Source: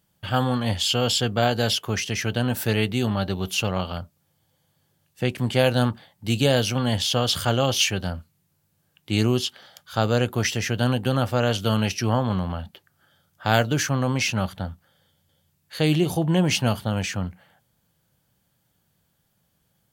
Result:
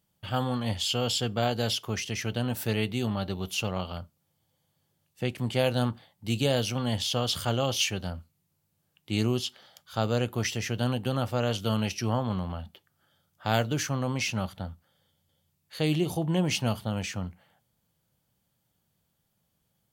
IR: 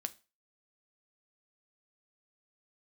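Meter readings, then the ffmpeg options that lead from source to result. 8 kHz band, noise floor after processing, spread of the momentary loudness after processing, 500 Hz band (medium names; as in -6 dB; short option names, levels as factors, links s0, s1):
-5.5 dB, -76 dBFS, 10 LU, -6.0 dB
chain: -filter_complex "[0:a]equalizer=f=1600:w=4.7:g=-4.5,asplit=2[s0][s1];[1:a]atrim=start_sample=2205[s2];[s1][s2]afir=irnorm=-1:irlink=0,volume=0.447[s3];[s0][s3]amix=inputs=2:normalize=0,volume=0.376"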